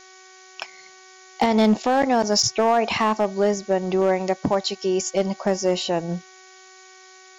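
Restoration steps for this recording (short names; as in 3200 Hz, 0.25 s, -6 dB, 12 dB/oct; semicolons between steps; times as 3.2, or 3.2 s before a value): clip repair -11 dBFS; de-hum 375.1 Hz, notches 6; denoiser 19 dB, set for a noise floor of -48 dBFS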